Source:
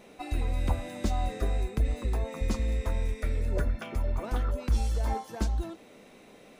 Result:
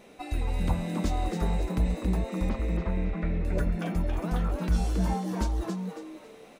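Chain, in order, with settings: 2.49–3.45 s: Chebyshev low-pass 2.2 kHz, order 2; frequency-shifting echo 275 ms, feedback 34%, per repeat +130 Hz, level -6 dB

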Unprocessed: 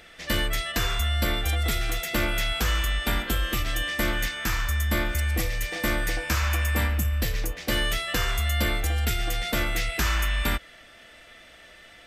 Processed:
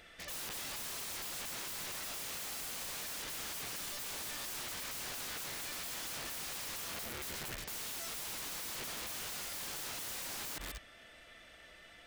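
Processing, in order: chunks repeated in reverse 196 ms, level -12 dB; 9.14–9.87 s: high-pass 42 Hz 12 dB/octave; integer overflow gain 30 dB; trim -7.5 dB

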